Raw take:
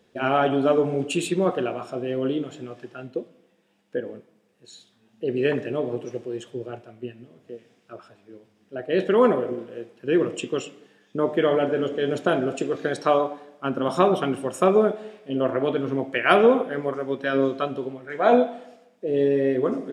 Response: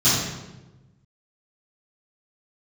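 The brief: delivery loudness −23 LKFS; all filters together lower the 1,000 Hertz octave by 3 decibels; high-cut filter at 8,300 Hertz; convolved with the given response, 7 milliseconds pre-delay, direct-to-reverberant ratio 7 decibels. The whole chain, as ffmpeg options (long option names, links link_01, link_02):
-filter_complex "[0:a]lowpass=8300,equalizer=frequency=1000:width_type=o:gain=-4.5,asplit=2[link_01][link_02];[1:a]atrim=start_sample=2205,adelay=7[link_03];[link_02][link_03]afir=irnorm=-1:irlink=0,volume=-25dB[link_04];[link_01][link_04]amix=inputs=2:normalize=0"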